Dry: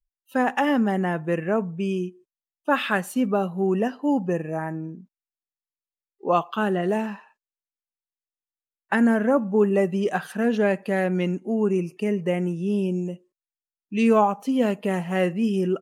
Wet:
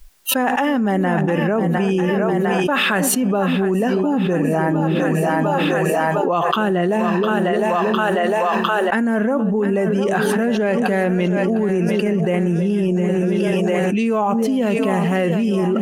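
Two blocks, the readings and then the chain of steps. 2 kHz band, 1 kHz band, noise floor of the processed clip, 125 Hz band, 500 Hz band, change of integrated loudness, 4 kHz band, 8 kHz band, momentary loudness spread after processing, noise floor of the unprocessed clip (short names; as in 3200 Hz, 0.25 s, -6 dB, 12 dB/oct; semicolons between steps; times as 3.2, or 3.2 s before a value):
+7.5 dB, +7.0 dB, -20 dBFS, +8.5 dB, +6.5 dB, +5.5 dB, +11.0 dB, n/a, 1 LU, under -85 dBFS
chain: split-band echo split 490 Hz, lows 0.313 s, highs 0.705 s, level -11 dB; fast leveller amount 100%; gain -2.5 dB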